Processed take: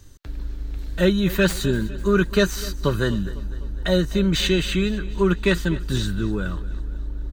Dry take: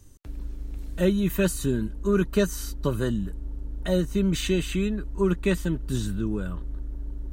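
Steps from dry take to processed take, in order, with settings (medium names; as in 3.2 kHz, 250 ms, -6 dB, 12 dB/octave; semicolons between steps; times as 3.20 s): tracing distortion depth 0.028 ms; fifteen-band graphic EQ 250 Hz -3 dB, 1.6 kHz +6 dB, 4 kHz +7 dB, 10 kHz -6 dB; feedback delay 251 ms, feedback 55%, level -18 dB; trim +4.5 dB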